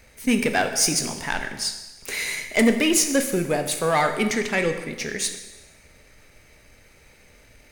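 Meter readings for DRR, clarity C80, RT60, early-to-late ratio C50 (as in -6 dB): 6.5 dB, 10.5 dB, 1.1 s, 8.5 dB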